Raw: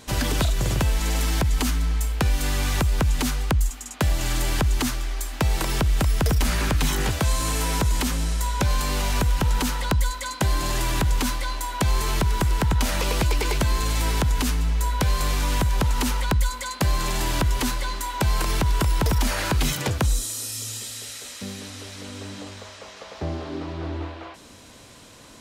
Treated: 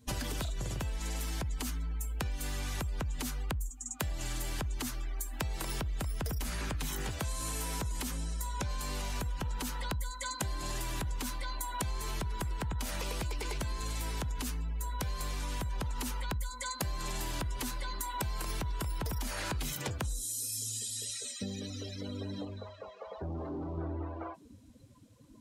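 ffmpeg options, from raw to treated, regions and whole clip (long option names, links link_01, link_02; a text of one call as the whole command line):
ffmpeg -i in.wav -filter_complex "[0:a]asettb=1/sr,asplit=3[link_01][link_02][link_03];[link_01]atrim=end=22.454[link_04];[link_02]atrim=start=22.45:end=23.78,asetpts=PTS-STARTPTS,afade=type=in:duration=0.004:curve=qsin,afade=type=out:start_time=1.326:duration=0.004:curve=qsin,lowpass=5400,asoftclip=type=hard:threshold=-35dB[link_05];[link_03]atrim=start=23.776[link_06];[link_04][link_05]acrossfade=duration=0.004:curve1=hsin:curve2=qsin[link_07];[link_07][link_06]acrossfade=duration=0.004:curve1=qsin:curve2=hsin,afftdn=noise_reduction=26:noise_floor=-38,highshelf=frequency=8800:gain=12,acompressor=threshold=-34dB:ratio=6" out.wav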